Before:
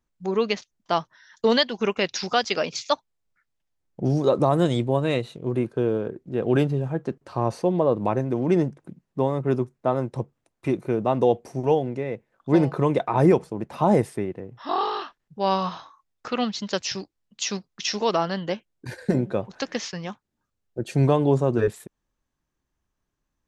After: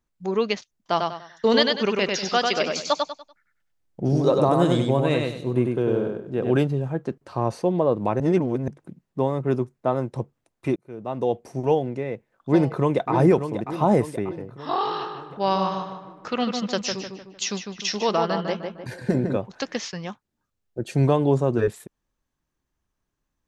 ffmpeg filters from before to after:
-filter_complex "[0:a]asplit=3[a][b][c];[a]afade=t=out:st=0.96:d=0.02[d];[b]aecho=1:1:97|194|291|388:0.668|0.214|0.0684|0.0219,afade=t=in:st=0.96:d=0.02,afade=t=out:st=6.51:d=0.02[e];[c]afade=t=in:st=6.51:d=0.02[f];[d][e][f]amix=inputs=3:normalize=0,asplit=2[g][h];[h]afade=t=in:st=12.11:d=0.01,afade=t=out:st=13.11:d=0.01,aecho=0:1:590|1180|1770|2360|2950|3540|4130:0.375837|0.206711|0.113691|0.0625299|0.0343915|0.0189153|0.0104034[i];[g][i]amix=inputs=2:normalize=0,asettb=1/sr,asplit=3[j][k][l];[j]atrim=end=14.854[m];[k]atrim=start=14.85:end=19.37,asetpts=PTS-STARTPTS,afade=t=in:d=0.004:c=qsin,afade=t=out:st=4.516:d=0.004:c=qsin,asplit=2[n][o];[o]adelay=152,lowpass=f=2.6k:p=1,volume=-5dB,asplit=2[p][q];[q]adelay=152,lowpass=f=2.6k:p=1,volume=0.44,asplit=2[r][s];[s]adelay=152,lowpass=f=2.6k:p=1,volume=0.44,asplit=2[t][u];[u]adelay=152,lowpass=f=2.6k:p=1,volume=0.44,asplit=2[v][w];[w]adelay=152,lowpass=f=2.6k:p=1,volume=0.44[x];[n][p][r][t][v][x]amix=inputs=6:normalize=0,atrim=end_sample=199332[y];[l]atrim=start=19.366[z];[m][y]acrossfade=d=0.004:c1=hsin:c2=qsin[aa];[aa][z]acrossfade=d=0.004:c1=qsin:c2=hsin,asplit=4[ab][ac][ad][ae];[ab]atrim=end=8.202[af];[ac]atrim=start=8.198:end=8.682,asetpts=PTS-STARTPTS,areverse[ag];[ad]atrim=start=8.678:end=10.76,asetpts=PTS-STARTPTS,afade=t=out:st=2.078:d=0.004:c=hsin[ah];[ae]atrim=start=10.76,asetpts=PTS-STARTPTS,afade=t=in:d=0.82[ai];[af][ag]acrossfade=d=0.004:c1=hsin:c2=hsin[aj];[ah][ai]concat=n=2:v=0:a=1[ak];[aj][ak]acrossfade=d=0.004:c1=hsin:c2=hsin"

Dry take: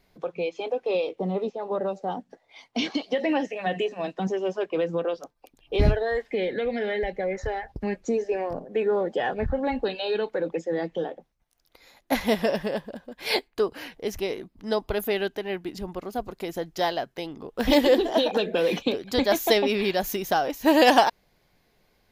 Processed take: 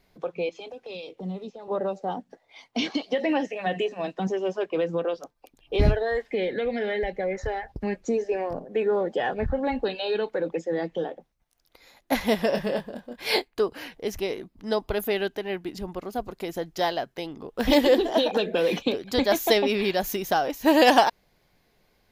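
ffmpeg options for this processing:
-filter_complex "[0:a]asettb=1/sr,asplit=3[a][b][c];[a]atrim=end=0.494[d];[b]atrim=start=0.49:end=1.68,asetpts=PTS-STARTPTS,afade=t=in:d=0.004:c=qsin,afade=t=out:st=1.186:d=0.004:c=qsin,acrossover=split=200|3000[e][f][g];[f]acompressor=threshold=-39dB:ratio=6:attack=3.2:release=140:knee=2.83:detection=peak[h];[e][h][g]amix=inputs=3:normalize=0[i];[c]atrim=start=1.676[j];[d][i]acrossfade=d=0.004:c1=hsin:c2=qsin[k];[k][j]acrossfade=d=0.004:c1=qsin:c2=hsin,asettb=1/sr,asplit=3[l][m][n];[l]atrim=end=12.504[o];[m]atrim=start=12.5:end=13.45,asetpts=PTS-STARTPTS,afade=t=in:d=0.004:c=qsin,afade=t=out:st=0.946:d=0.004:c=qsin,asplit=2[p][q];[q]adelay=25,volume=-5.5dB[r];[p][r]amix=inputs=2:normalize=0,atrim=end_sample=41895[s];[n]atrim=start=13.446[t];[o][s]acrossfade=d=0.004:c1=hsin:c2=qsin[u];[u][t]acrossfade=d=0.004:c1=qsin:c2=hsin"

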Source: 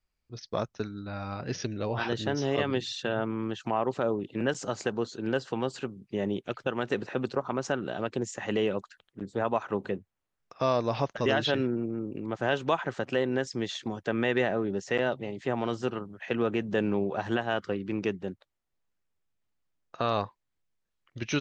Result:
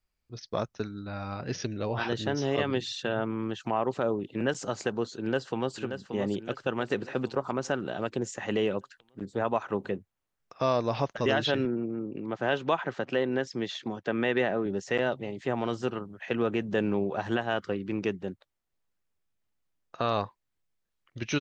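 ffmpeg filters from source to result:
-filter_complex "[0:a]asplit=2[a][b];[b]afade=t=in:st=5.19:d=0.01,afade=t=out:st=5.77:d=0.01,aecho=0:1:580|1160|1740|2320|2900|3480:0.398107|0.199054|0.0995268|0.0497634|0.0248817|0.0124408[c];[a][c]amix=inputs=2:normalize=0,asettb=1/sr,asplit=3[d][e][f];[d]atrim=end=11.654[g];[e]atrim=start=11.65:end=14.66,asetpts=PTS-STARTPTS,afade=t=in:d=0.004:c=qsin,afade=t=out:st=3.006:d=0.004:c=qsin,highpass=120,lowpass=5.3k[h];[f]atrim=start=14.656[i];[g][h]acrossfade=d=0.004:c1=hsin:c2=qsin[j];[j][i]acrossfade=d=0.004:c1=qsin:c2=hsin"

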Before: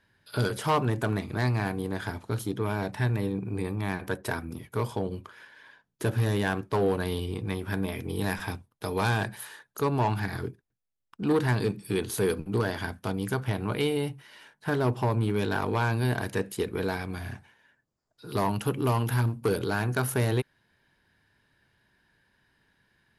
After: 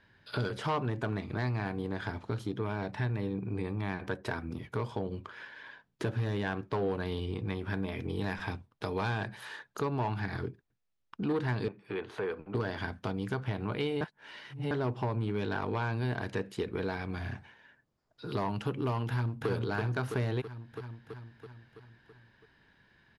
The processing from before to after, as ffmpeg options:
-filter_complex "[0:a]asettb=1/sr,asplit=3[a][b][c];[a]atrim=end=11.684[d];[b]atrim=start=11.68:end=12.55,asetpts=PTS-STARTPTS,afade=t=in:d=0.004:c=qsin,afade=t=out:st=0.866:d=0.004:c=qsin,acrossover=split=430 2600:gain=0.2 1 0.1[e][f][g];[e][f][g]amix=inputs=3:normalize=0[h];[c]atrim=start=12.546[i];[d][h]acrossfade=d=0.004:c1=hsin:c2=qsin[j];[j][i]acrossfade=d=0.004:c1=qsin:c2=hsin,asplit=2[k][l];[l]afade=t=in:st=19.08:d=0.01,afade=t=out:st=19.48:d=0.01,aecho=0:1:330|660|990|1320|1650|1980|2310|2640|2970:0.630957|0.378574|0.227145|0.136287|0.0817721|0.0490632|0.0294379|0.0176628|0.0105977[m];[k][m]amix=inputs=2:normalize=0,asplit=3[n][o][p];[n]atrim=end=14.012[q];[o]atrim=start=14.008:end=14.712,asetpts=PTS-STARTPTS,areverse[r];[p]atrim=start=14.708[s];[q][r]acrossfade=d=0.004:c1=hsin:c2=hsin[t];[t][s]acrossfade=d=0.004:c1=hsin:c2=hsin,lowpass=4.6k,acompressor=threshold=-41dB:ratio=2,volume=4dB"

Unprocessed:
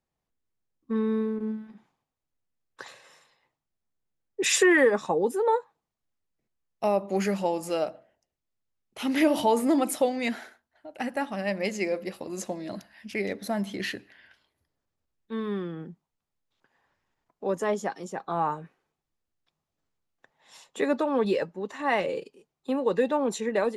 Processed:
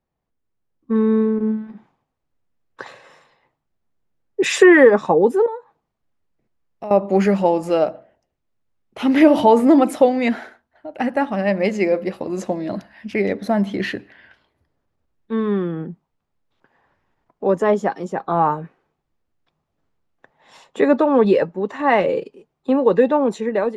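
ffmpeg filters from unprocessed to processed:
-filter_complex "[0:a]asettb=1/sr,asplit=3[a][b][c];[a]atrim=end=5.464[d];[b]atrim=start=5.46:end=6.91,asetpts=PTS-STARTPTS,afade=t=in:d=0.004:c=qsin,afade=t=out:st=1.446:d=0.004:c=qsin,acompressor=threshold=-44dB:ratio=2.5:attack=3.2:release=140:knee=1:detection=peak[e];[c]atrim=start=6.906[f];[d][e]acrossfade=d=0.004:c1=hsin:c2=qsin[g];[g][f]acrossfade=d=0.004:c1=qsin:c2=hsin,lowpass=f=1.5k:p=1,dynaudnorm=f=190:g=9:m=5dB,volume=6dB"

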